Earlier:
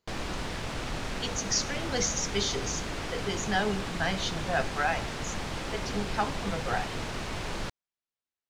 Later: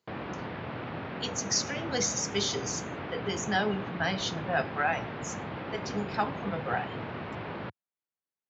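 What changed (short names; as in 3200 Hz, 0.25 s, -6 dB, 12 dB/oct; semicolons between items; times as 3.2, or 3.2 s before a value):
background: add Gaussian blur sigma 3.2 samples; master: add HPF 95 Hz 24 dB/oct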